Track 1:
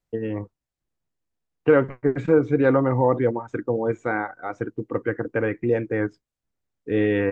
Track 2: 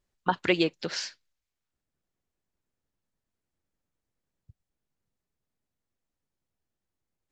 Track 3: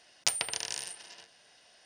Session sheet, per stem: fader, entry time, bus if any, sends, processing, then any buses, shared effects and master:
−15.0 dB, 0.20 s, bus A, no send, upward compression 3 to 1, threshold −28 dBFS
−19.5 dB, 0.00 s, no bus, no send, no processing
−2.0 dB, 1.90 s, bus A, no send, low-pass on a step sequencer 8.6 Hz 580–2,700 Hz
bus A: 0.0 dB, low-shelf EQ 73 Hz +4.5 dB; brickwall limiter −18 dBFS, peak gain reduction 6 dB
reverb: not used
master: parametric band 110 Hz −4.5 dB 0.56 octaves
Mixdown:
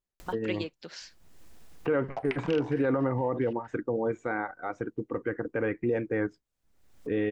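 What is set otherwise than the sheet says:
stem 1 −15.0 dB → −4.0 dB
stem 2 −19.5 dB → −11.0 dB

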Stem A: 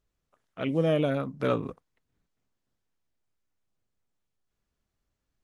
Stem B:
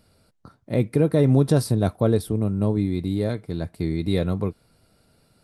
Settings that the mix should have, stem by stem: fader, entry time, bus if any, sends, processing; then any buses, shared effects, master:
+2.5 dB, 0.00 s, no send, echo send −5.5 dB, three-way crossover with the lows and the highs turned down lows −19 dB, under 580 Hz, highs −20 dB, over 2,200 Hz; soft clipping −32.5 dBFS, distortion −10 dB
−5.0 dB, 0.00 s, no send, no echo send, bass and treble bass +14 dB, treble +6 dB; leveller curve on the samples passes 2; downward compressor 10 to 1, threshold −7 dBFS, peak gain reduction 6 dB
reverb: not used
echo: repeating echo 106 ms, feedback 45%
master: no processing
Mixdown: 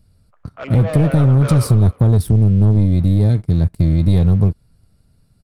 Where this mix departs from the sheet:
stem A +2.5 dB → +10.0 dB
master: extra low-shelf EQ 83 Hz +8.5 dB

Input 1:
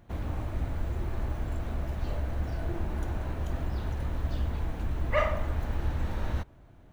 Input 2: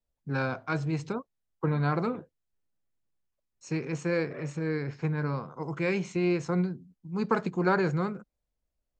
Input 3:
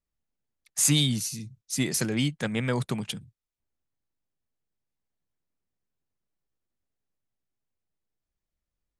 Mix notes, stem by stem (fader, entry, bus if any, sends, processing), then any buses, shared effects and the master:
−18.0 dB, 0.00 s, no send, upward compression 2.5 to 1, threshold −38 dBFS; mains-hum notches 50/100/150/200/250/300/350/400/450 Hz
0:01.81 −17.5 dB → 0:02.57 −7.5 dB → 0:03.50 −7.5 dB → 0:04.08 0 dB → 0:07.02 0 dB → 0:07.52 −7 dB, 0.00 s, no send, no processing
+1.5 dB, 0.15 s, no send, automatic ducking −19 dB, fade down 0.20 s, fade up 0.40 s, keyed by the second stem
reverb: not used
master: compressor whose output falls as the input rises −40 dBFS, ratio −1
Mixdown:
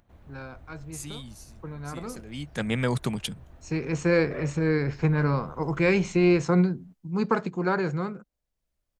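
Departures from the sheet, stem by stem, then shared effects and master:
stem 2 −17.5 dB → −11.0 dB
master: missing compressor whose output falls as the input rises −40 dBFS, ratio −1

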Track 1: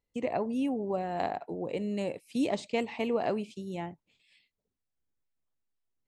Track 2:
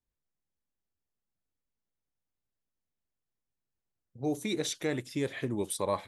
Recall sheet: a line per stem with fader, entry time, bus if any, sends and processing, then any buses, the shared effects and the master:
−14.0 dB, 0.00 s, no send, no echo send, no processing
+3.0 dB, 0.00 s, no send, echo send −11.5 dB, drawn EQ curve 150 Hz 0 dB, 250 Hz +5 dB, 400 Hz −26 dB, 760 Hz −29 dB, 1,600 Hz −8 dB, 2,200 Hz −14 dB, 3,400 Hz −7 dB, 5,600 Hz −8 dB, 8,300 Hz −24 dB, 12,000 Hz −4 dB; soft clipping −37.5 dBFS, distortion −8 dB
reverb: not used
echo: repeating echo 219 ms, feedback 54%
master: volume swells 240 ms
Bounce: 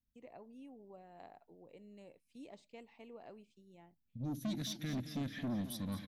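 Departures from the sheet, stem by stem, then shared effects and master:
stem 1 −14.0 dB → −23.5 dB
master: missing volume swells 240 ms

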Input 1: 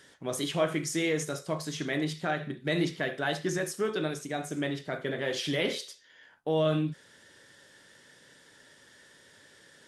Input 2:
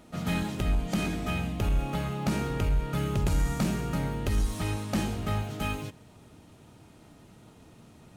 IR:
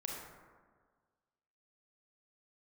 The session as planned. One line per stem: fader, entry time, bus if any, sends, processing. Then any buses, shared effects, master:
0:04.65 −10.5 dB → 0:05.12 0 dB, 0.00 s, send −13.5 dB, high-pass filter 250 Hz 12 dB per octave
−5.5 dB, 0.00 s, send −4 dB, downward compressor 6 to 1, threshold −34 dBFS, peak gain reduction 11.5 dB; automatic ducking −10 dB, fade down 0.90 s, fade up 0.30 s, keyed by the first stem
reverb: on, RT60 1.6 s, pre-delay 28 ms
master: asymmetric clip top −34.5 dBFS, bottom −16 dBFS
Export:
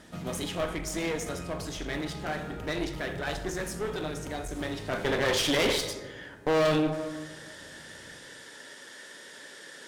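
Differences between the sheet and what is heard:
stem 1 −10.5 dB → −2.5 dB
reverb return +6.0 dB

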